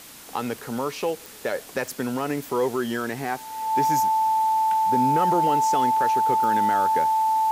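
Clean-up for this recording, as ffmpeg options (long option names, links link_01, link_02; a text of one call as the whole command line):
ffmpeg -i in.wav -af "adeclick=threshold=4,bandreject=frequency=880:width=30,afwtdn=0.0071" out.wav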